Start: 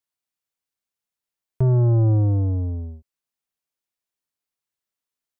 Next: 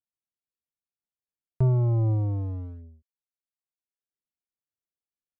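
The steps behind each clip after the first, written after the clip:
adaptive Wiener filter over 41 samples
reverb reduction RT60 0.86 s
parametric band 400 Hz −2 dB
level −2.5 dB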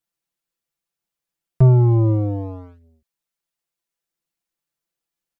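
comb filter 5.9 ms, depth 82%
level +7.5 dB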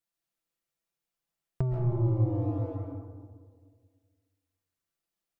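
downward compressor 8 to 1, threshold −22 dBFS, peak gain reduction 14 dB
comb and all-pass reverb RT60 1.8 s, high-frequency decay 0.3×, pre-delay 95 ms, DRR 0 dB
level −5 dB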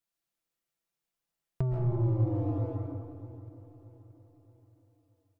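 in parallel at −7.5 dB: hard clipping −25 dBFS, distortion −12 dB
on the sum: repeating echo 625 ms, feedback 44%, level −16 dB
level −3.5 dB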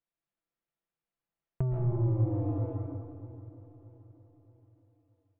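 high-frequency loss of the air 390 metres

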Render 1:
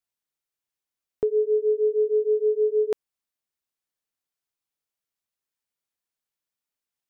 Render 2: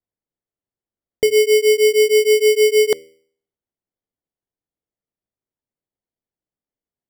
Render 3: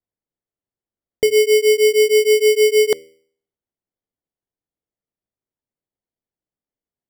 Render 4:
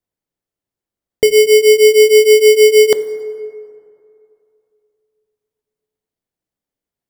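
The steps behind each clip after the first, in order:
hum removal 79.7 Hz, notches 7; low-pass that shuts in the quiet parts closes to 580 Hz, open at −19 dBFS; decimation without filtering 17×; level +8.5 dB
no processing that can be heard
dense smooth reverb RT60 2.7 s, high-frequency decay 0.4×, DRR 13 dB; level +5 dB

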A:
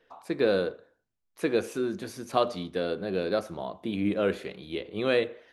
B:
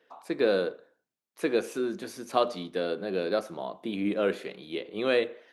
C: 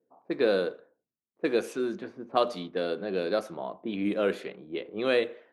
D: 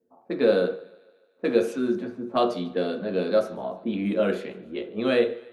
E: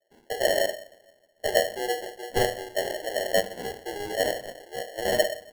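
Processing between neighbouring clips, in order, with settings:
high-pass filter 200 Hz 12 dB per octave
low-pass that shuts in the quiet parts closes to 310 Hz, open at −25 dBFS
feedback echo with a high-pass in the loop 148 ms, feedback 58%, high-pass 240 Hz, level −22.5 dB; on a send at −3 dB: convolution reverb RT60 0.45 s, pre-delay 3 ms
single-sideband voice off tune +120 Hz 290–2,800 Hz; decimation without filtering 36×; level −1.5 dB

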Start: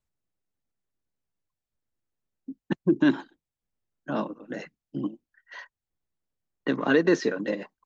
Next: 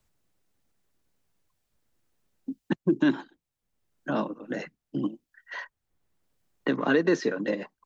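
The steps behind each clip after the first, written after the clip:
multiband upward and downward compressor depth 40%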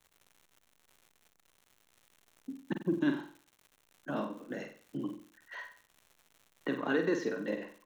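flutter between parallel walls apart 8.1 metres, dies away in 0.44 s
surface crackle 190 per second −40 dBFS
parametric band 4,800 Hz −7.5 dB 0.22 octaves
level −8 dB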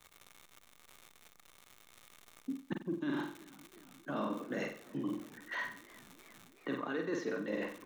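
reversed playback
downward compressor 8 to 1, threshold −41 dBFS, peak gain reduction 16 dB
reversed playback
hollow resonant body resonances 1,200/2,200/3,600 Hz, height 8 dB, ringing for 30 ms
feedback echo with a swinging delay time 352 ms, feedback 75%, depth 148 cents, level −22 dB
level +7 dB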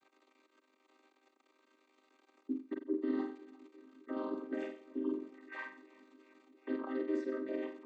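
channel vocoder with a chord as carrier minor triad, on C4
level +1 dB

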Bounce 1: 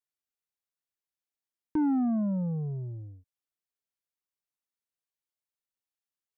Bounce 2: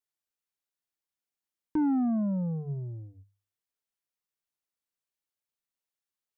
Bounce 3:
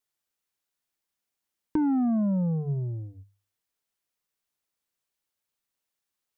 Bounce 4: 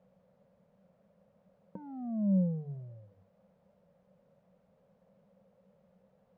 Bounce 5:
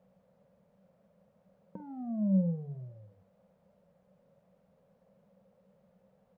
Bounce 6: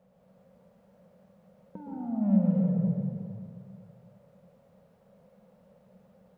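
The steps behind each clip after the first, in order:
mains-hum notches 50/100/150 Hz
downward compressor, threshold −29 dBFS, peak gain reduction 5 dB; level +6 dB
background noise pink −54 dBFS; pair of resonant band-passes 320 Hz, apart 1.5 octaves
double-tracking delay 47 ms −11.5 dB
in parallel at −9 dB: soft clipping −36.5 dBFS, distortion −5 dB; on the sum: convolution reverb RT60 2.4 s, pre-delay 107 ms, DRR −3.5 dB

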